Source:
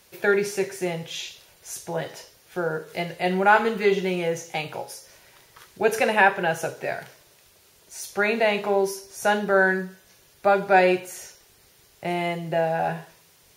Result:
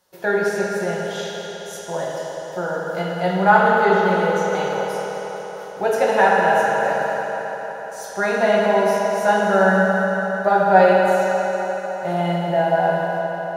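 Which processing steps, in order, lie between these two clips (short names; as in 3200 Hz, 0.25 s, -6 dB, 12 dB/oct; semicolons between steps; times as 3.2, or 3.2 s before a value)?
bell 840 Hz +7.5 dB 1.7 oct; gate -49 dBFS, range -8 dB; bell 2400 Hz -9.5 dB 0.38 oct; reverb RT60 5.0 s, pre-delay 3 ms, DRR -5 dB; gain -4.5 dB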